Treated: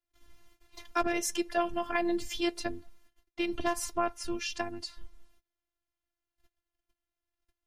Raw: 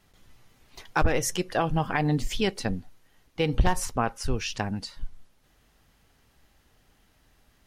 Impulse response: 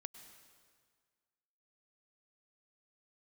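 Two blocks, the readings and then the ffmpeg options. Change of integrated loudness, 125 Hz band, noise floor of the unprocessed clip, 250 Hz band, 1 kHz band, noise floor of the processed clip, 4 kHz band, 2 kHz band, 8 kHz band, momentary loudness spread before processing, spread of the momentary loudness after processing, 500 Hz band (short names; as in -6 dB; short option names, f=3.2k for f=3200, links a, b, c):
-5.0 dB, -23.5 dB, -64 dBFS, -4.0 dB, -4.5 dB, under -85 dBFS, -4.0 dB, -4.5 dB, -4.0 dB, 12 LU, 9 LU, -3.5 dB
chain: -filter_complex "[0:a]agate=range=-25dB:threshold=-57dB:ratio=16:detection=peak,acrossover=split=110|850[a][b][c];[a]acompressor=threshold=-37dB:ratio=6[d];[d][b][c]amix=inputs=3:normalize=0,afftfilt=real='hypot(re,im)*cos(PI*b)':imag='0':win_size=512:overlap=0.75"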